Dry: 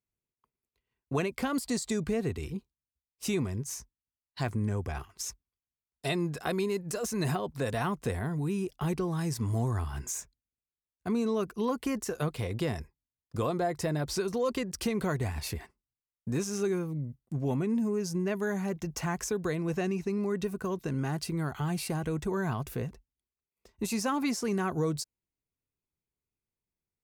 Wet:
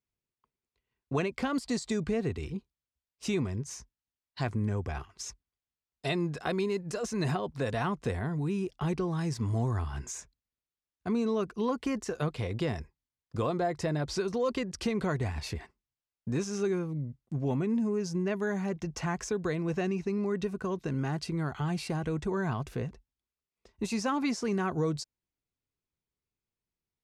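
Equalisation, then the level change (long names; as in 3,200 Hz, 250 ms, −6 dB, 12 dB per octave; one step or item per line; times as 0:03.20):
low-pass filter 6,200 Hz 12 dB per octave
0.0 dB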